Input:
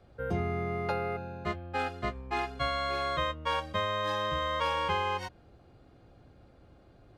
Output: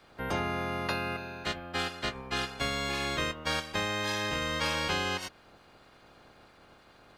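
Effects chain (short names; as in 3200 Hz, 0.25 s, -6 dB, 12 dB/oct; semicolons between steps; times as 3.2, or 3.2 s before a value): spectral limiter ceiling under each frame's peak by 23 dB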